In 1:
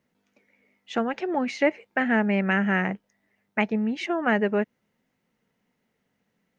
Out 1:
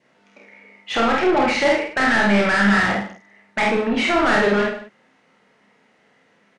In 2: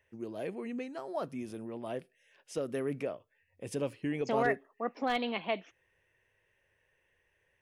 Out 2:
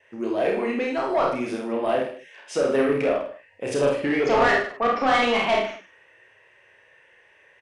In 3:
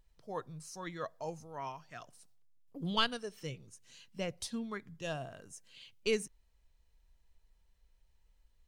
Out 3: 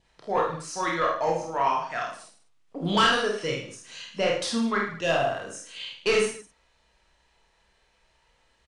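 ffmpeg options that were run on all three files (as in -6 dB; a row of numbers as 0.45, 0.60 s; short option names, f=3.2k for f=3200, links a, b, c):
-filter_complex "[0:a]adynamicequalizer=threshold=0.00501:dfrequency=1300:dqfactor=3.6:tfrequency=1300:tqfactor=3.6:attack=5:release=100:ratio=0.375:range=2.5:mode=boostabove:tftype=bell,asplit=2[a][b];[b]adelay=49,volume=-4dB[c];[a][c]amix=inputs=2:normalize=0,asplit=2[d][e];[e]highpass=f=720:p=1,volume=30dB,asoftclip=type=tanh:threshold=-5.5dB[f];[d][f]amix=inputs=2:normalize=0,lowpass=f=2.2k:p=1,volume=-6dB,aecho=1:1:30|64.5|104.2|149.8|202.3:0.631|0.398|0.251|0.158|0.1,aresample=22050,aresample=44100,volume=-5.5dB"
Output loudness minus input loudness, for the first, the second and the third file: +7.0, +13.0, +12.5 LU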